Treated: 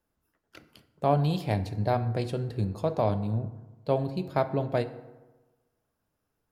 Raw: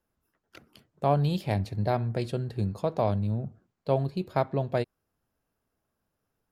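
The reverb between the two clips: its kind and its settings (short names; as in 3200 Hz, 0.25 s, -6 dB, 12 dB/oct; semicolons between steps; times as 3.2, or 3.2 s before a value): FDN reverb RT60 1.2 s, low-frequency decay 1×, high-frequency decay 0.5×, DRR 10.5 dB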